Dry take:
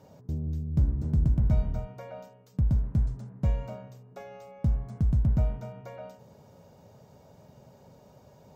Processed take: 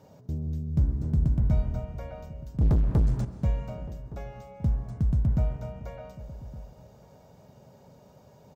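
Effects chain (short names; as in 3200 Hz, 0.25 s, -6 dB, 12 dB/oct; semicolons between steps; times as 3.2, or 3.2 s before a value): 2.61–3.25 sample leveller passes 3; outdoor echo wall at 200 m, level -17 dB; reverb RT60 1.8 s, pre-delay 90 ms, DRR 12.5 dB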